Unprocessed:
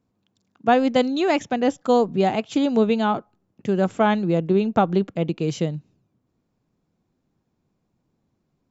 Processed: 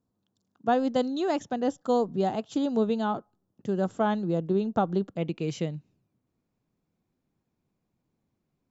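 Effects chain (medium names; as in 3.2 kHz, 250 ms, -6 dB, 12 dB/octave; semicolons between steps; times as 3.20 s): peaking EQ 2.3 kHz -12.5 dB 0.53 oct, from 5.18 s +3 dB; trim -6.5 dB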